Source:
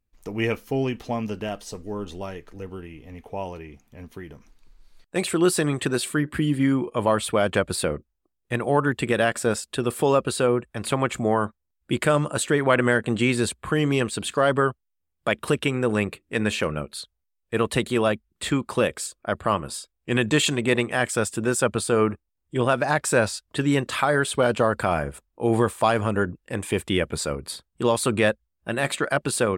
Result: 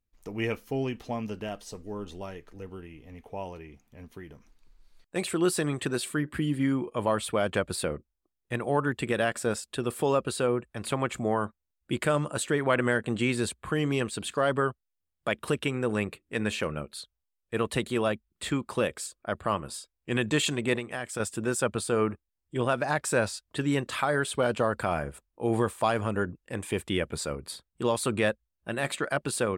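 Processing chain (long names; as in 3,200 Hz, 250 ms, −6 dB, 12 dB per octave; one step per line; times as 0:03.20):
0:20.75–0:21.20: downward compressor 6 to 1, threshold −25 dBFS, peak gain reduction 8.5 dB
level −5.5 dB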